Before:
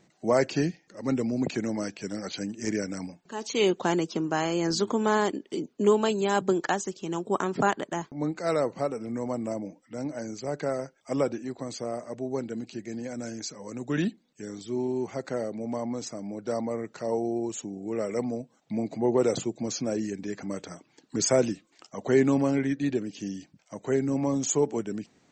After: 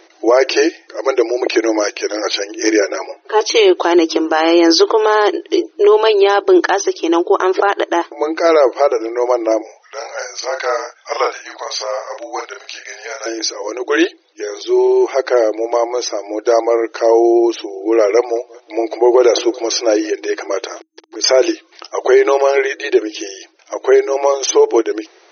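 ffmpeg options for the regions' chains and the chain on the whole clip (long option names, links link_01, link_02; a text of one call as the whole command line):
ffmpeg -i in.wav -filter_complex "[0:a]asettb=1/sr,asplit=3[link_01][link_02][link_03];[link_01]atrim=end=2.804[link_04];[link_02]atrim=start=2.8:end=3.41,asetpts=PTS-STARTPTS,afade=type=in:duration=0.004:curve=qsin,afade=type=out:start_time=0.606:duration=0.004:curve=qsin,aemphasis=mode=reproduction:type=bsi,aecho=1:1:7.3:0.69,atrim=end_sample=26901[link_05];[link_03]atrim=start=3.406[link_06];[link_04][link_05]acrossfade=duration=0.004:curve1=hsin:curve2=qsin[link_07];[link_07][link_06]acrossfade=duration=0.004:curve1=qsin:curve2=hsin,asettb=1/sr,asplit=3[link_08][link_09][link_10];[link_08]atrim=end=9.614[link_11];[link_09]atrim=start=9.61:end=13.26,asetpts=PTS-STARTPTS,afade=type=in:duration=0.004:curve=qsin,afade=type=out:start_time=3.646:duration=0.004:curve=qsin,highpass=frequency=750:width=0.5412,highpass=frequency=750:width=1.3066,afreqshift=-58,asplit=2[link_12][link_13];[link_13]adelay=40,volume=-5dB[link_14];[link_12][link_14]amix=inputs=2:normalize=0,atrim=end_sample=160965[link_15];[link_10]atrim=start=13.256[link_16];[link_11][link_15]acrossfade=duration=0.004:curve1=hsin:curve2=qsin[link_17];[link_17][link_16]acrossfade=duration=0.004:curve1=qsin:curve2=hsin,asettb=1/sr,asplit=3[link_18][link_19][link_20];[link_18]atrim=end=18.174[link_21];[link_19]atrim=start=18.17:end=20.11,asetpts=PTS-STARTPTS,afade=type=in:duration=0.004:curve=qsin,afade=type=out:start_time=1.936:duration=0.004:curve=qsin,equalizer=frequency=180:width=1.3:gain=-9,aecho=1:1:186|372|558|744:0.0708|0.0396|0.0222|0.0124,atrim=end_sample=85554[link_22];[link_20]atrim=start=20.106[link_23];[link_21][link_22]acrossfade=duration=0.004:curve1=hsin:curve2=qsin[link_24];[link_24][link_23]acrossfade=duration=0.004:curve1=qsin:curve2=hsin,asettb=1/sr,asplit=3[link_25][link_26][link_27];[link_25]atrim=end=20.664[link_28];[link_26]atrim=start=20.66:end=21.24,asetpts=PTS-STARTPTS,afade=type=in:duration=0.004:curve=qsin,afade=type=out:start_time=0.576:duration=0.004:curve=qsin,aeval=exprs='val(0)*gte(abs(val(0)),0.00211)':channel_layout=same,acompressor=threshold=-39dB:ratio=5:attack=3.2:release=140:knee=1:detection=peak[link_29];[link_27]atrim=start=21.236[link_30];[link_28][link_29]acrossfade=duration=0.004:curve1=hsin:curve2=qsin[link_31];[link_31][link_30]acrossfade=duration=0.004:curve1=qsin:curve2=hsin,afftfilt=real='re*between(b*sr/4096,320,6300)':imag='im*between(b*sr/4096,320,6300)':win_size=4096:overlap=0.75,alimiter=level_in=20dB:limit=-1dB:release=50:level=0:latency=1,volume=-1dB" out.wav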